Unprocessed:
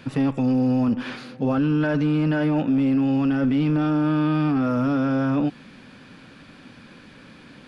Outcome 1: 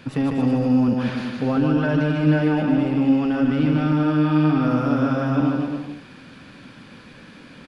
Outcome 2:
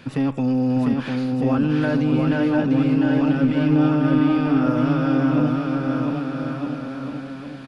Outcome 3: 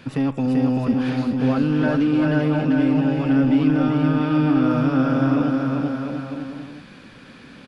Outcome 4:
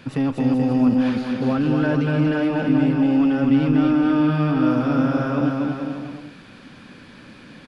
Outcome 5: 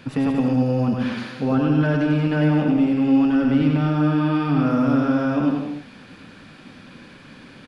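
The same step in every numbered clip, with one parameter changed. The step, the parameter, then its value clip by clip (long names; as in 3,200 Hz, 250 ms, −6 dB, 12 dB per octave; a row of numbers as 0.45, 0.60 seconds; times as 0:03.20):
bouncing-ball delay, first gap: 150, 700, 390, 240, 100 milliseconds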